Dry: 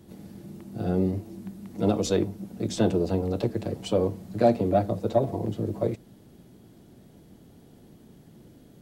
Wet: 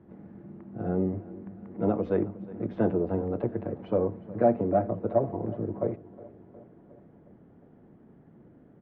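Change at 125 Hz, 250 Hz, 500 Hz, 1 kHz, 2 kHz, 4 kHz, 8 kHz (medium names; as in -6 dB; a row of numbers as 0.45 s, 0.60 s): -4.5 dB, -2.5 dB, -1.5 dB, -1.5 dB, -4.0 dB, under -20 dB, under -35 dB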